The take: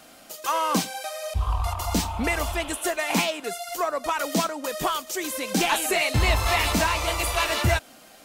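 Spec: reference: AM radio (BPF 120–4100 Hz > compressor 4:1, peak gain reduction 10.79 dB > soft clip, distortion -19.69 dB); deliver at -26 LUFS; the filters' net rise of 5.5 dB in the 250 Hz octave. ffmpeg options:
-af "highpass=120,lowpass=4.1k,equalizer=f=250:t=o:g=7.5,acompressor=threshold=-27dB:ratio=4,asoftclip=threshold=-21.5dB,volume=6dB"

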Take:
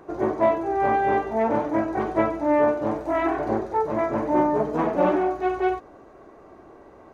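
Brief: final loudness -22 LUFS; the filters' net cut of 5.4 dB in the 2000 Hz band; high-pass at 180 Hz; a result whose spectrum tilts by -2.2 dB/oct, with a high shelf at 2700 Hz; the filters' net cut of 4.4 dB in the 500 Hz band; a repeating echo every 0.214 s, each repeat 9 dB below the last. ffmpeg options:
-af "highpass=180,equalizer=f=500:t=o:g=-5.5,equalizer=f=2k:t=o:g=-5,highshelf=f=2.7k:g=-4.5,aecho=1:1:214|428|642|856:0.355|0.124|0.0435|0.0152,volume=4.5dB"

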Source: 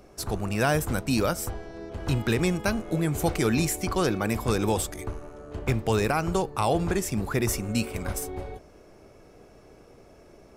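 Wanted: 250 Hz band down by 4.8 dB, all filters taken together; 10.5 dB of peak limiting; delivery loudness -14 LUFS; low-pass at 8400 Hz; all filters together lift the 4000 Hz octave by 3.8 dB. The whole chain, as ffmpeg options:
-af "lowpass=8.4k,equalizer=f=250:t=o:g=-7,equalizer=f=4k:t=o:g=5,volume=19dB,alimiter=limit=-3dB:level=0:latency=1"

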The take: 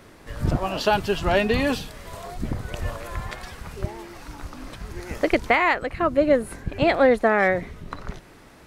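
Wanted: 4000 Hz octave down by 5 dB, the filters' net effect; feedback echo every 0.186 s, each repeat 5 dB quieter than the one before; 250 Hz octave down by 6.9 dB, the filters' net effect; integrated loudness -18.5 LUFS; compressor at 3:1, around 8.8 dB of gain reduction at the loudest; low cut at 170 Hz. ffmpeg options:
-af "highpass=170,equalizer=f=250:t=o:g=-8,equalizer=f=4k:t=o:g=-7,acompressor=threshold=-27dB:ratio=3,aecho=1:1:186|372|558|744|930|1116|1302:0.562|0.315|0.176|0.0988|0.0553|0.031|0.0173,volume=12.5dB"

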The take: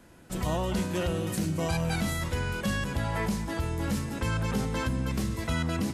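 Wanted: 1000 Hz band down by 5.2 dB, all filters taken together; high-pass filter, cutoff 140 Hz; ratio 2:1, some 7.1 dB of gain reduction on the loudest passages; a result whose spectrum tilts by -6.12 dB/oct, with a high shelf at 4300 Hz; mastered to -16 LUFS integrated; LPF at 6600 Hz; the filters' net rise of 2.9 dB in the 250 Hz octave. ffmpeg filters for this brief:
-af "highpass=140,lowpass=6.6k,equalizer=f=250:t=o:g=5.5,equalizer=f=1k:t=o:g=-6.5,highshelf=f=4.3k:g=-6,acompressor=threshold=-36dB:ratio=2,volume=20dB"

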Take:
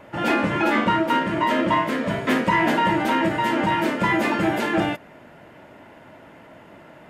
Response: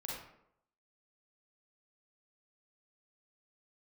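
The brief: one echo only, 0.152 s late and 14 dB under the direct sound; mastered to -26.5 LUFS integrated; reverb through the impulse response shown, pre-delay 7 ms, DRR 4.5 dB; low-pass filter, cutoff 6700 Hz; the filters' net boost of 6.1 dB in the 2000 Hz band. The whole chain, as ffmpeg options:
-filter_complex "[0:a]lowpass=6.7k,equalizer=f=2k:t=o:g=7,aecho=1:1:152:0.2,asplit=2[a][b];[1:a]atrim=start_sample=2205,adelay=7[c];[b][c]afir=irnorm=-1:irlink=0,volume=-4.5dB[d];[a][d]amix=inputs=2:normalize=0,volume=-10dB"

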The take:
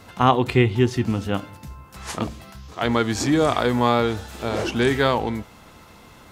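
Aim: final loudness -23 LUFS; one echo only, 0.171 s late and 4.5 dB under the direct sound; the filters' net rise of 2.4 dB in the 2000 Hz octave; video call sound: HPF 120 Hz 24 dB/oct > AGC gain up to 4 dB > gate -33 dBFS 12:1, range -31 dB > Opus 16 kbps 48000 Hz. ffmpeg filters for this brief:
-af "highpass=f=120:w=0.5412,highpass=f=120:w=1.3066,equalizer=f=2k:t=o:g=3,aecho=1:1:171:0.596,dynaudnorm=m=4dB,agate=range=-31dB:threshold=-33dB:ratio=12,volume=-2dB" -ar 48000 -c:a libopus -b:a 16k

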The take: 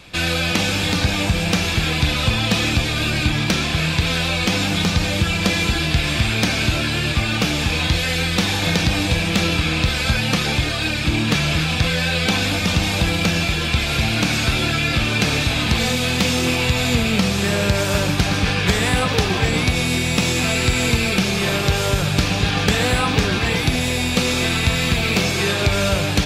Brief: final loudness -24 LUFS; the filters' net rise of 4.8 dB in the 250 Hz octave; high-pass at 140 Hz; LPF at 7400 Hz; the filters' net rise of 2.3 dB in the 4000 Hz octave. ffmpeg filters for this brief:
-af "highpass=140,lowpass=7.4k,equalizer=f=250:t=o:g=7.5,equalizer=f=4k:t=o:g=3,volume=-7dB"

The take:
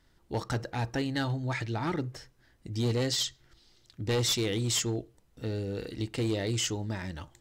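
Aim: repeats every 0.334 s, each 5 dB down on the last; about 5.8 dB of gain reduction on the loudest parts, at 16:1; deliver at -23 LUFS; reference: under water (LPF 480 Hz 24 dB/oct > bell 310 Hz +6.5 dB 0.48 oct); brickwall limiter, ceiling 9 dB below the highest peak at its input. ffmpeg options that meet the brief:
-af "acompressor=threshold=-31dB:ratio=16,alimiter=level_in=9dB:limit=-24dB:level=0:latency=1,volume=-9dB,lowpass=f=480:w=0.5412,lowpass=f=480:w=1.3066,equalizer=f=310:t=o:w=0.48:g=6.5,aecho=1:1:334|668|1002|1336|1670|2004|2338:0.562|0.315|0.176|0.0988|0.0553|0.031|0.0173,volume=16.5dB"

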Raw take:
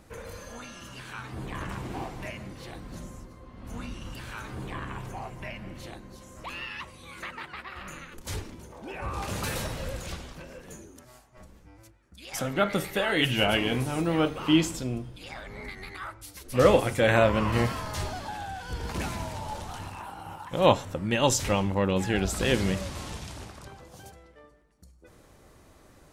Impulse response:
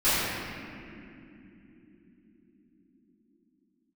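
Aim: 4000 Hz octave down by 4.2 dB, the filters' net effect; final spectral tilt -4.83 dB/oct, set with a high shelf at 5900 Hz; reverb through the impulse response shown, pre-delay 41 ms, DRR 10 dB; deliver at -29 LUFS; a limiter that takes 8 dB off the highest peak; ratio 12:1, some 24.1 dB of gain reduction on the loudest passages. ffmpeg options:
-filter_complex "[0:a]equalizer=f=4k:t=o:g=-7.5,highshelf=f=5.9k:g=3,acompressor=threshold=-39dB:ratio=12,alimiter=level_in=11.5dB:limit=-24dB:level=0:latency=1,volume=-11.5dB,asplit=2[a][b];[1:a]atrim=start_sample=2205,adelay=41[c];[b][c]afir=irnorm=-1:irlink=0,volume=-27dB[d];[a][d]amix=inputs=2:normalize=0,volume=16.5dB"

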